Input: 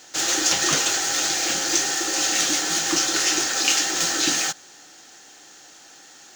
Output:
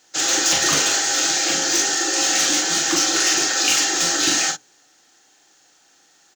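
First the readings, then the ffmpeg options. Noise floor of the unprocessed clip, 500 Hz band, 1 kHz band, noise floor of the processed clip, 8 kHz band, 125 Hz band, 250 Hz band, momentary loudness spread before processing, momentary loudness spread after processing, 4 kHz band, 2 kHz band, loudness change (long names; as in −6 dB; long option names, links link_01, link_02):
−48 dBFS, +3.5 dB, +3.0 dB, −57 dBFS, +3.0 dB, +1.5 dB, +2.5 dB, 3 LU, 2 LU, +3.0 dB, +3.0 dB, +3.0 dB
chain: -filter_complex "[0:a]bandreject=frequency=62.16:width_type=h:width=4,bandreject=frequency=124.32:width_type=h:width=4,bandreject=frequency=186.48:width_type=h:width=4,bandreject=frequency=248.64:width_type=h:width=4,bandreject=frequency=310.8:width_type=h:width=4,bandreject=frequency=372.96:width_type=h:width=4,bandreject=frequency=435.12:width_type=h:width=4,bandreject=frequency=497.28:width_type=h:width=4,bandreject=frequency=559.44:width_type=h:width=4,bandreject=frequency=621.6:width_type=h:width=4,asplit=2[link_01][link_02];[link_02]aeval=exprs='(mod(4.73*val(0)+1,2)-1)/4.73':channel_layout=same,volume=-5.5dB[link_03];[link_01][link_03]amix=inputs=2:normalize=0,afftdn=noise_reduction=13:noise_floor=-32,asplit=2[link_04][link_05];[link_05]adelay=41,volume=-5dB[link_06];[link_04][link_06]amix=inputs=2:normalize=0,volume=-1dB"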